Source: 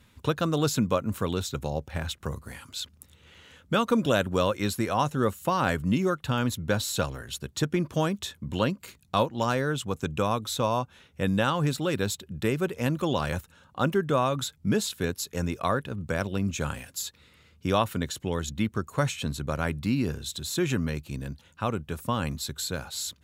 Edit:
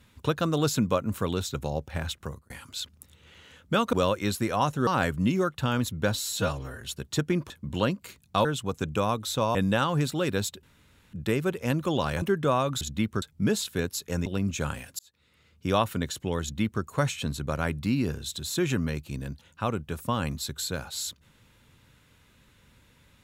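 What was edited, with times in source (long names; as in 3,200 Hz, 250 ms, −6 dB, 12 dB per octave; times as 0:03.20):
0:02.17–0:02.50: fade out
0:03.93–0:04.31: remove
0:05.25–0:05.53: remove
0:06.81–0:07.25: time-stretch 1.5×
0:07.94–0:08.29: remove
0:09.24–0:09.67: remove
0:10.77–0:11.21: remove
0:12.29: splice in room tone 0.50 s
0:13.38–0:13.88: remove
0:15.51–0:16.26: remove
0:16.99–0:17.75: fade in
0:18.42–0:18.83: duplicate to 0:14.47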